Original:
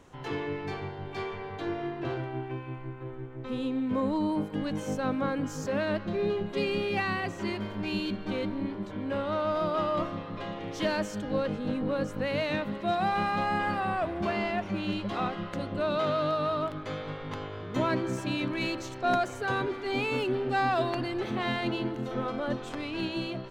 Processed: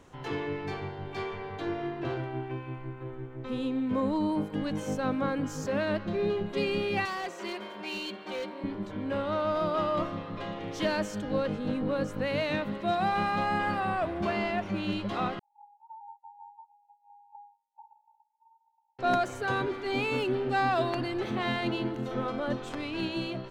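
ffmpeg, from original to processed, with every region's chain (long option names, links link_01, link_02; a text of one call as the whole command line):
ffmpeg -i in.wav -filter_complex "[0:a]asettb=1/sr,asplit=3[link_01][link_02][link_03];[link_01]atrim=end=7.054[link_04];[link_02]atrim=start=7.05:end=8.64,asetpts=PTS-STARTPTS,afade=type=in:duration=0.004:curve=qsin,afade=type=out:start_time=1.586:duration=0.004:curve=qsin,highpass=460,aecho=1:1:5.5:0.45,atrim=end_sample=70119,volume=30.5dB,asoftclip=hard,volume=-30.5dB[link_05];[link_03]atrim=start=8.636[link_06];[link_04][link_05]acrossfade=duration=0.004:curve1=hsin:curve2=qsin[link_07];[link_07][link_06]acrossfade=duration=0.004:curve1=qsin:curve2=hsin,asettb=1/sr,asplit=3[link_08][link_09][link_10];[link_08]atrim=end=15.394[link_11];[link_09]atrim=start=15.39:end=18.99,asetpts=PTS-STARTPTS,afade=type=in:duration=0.004:curve=qsin,afade=type=out:start_time=3.596:duration=0.004:curve=qsin,asuperpass=centerf=860:order=20:qfactor=7.2,agate=range=-33dB:threshold=-50dB:ratio=3:release=100:detection=peak[link_12];[link_10]atrim=start=18.986[link_13];[link_11][link_12]acrossfade=duration=0.004:curve1=hsin:curve2=qsin[link_14];[link_14][link_13]acrossfade=duration=0.004:curve1=qsin:curve2=hsin" out.wav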